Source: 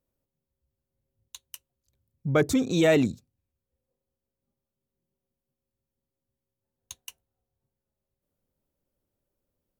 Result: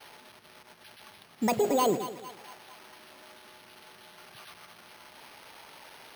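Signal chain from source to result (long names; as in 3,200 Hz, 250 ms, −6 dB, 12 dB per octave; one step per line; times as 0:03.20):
spike at every zero crossing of −19.5 dBFS
downward expander −22 dBFS
in parallel at +2 dB: compressor whose output falls as the input rises −32 dBFS
on the sum: brickwall limiter −18 dBFS, peak gain reduction 7.5 dB
change of speed 1.59×
on a send: echo with a time of its own for lows and highs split 770 Hz, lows 108 ms, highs 225 ms, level −11.5 dB
on the sum: bad sample-rate conversion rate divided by 6×, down filtered, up hold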